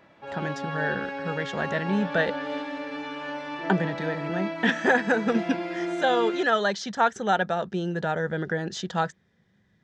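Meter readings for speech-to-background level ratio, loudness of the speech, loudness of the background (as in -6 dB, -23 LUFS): 6.0 dB, -27.0 LUFS, -33.0 LUFS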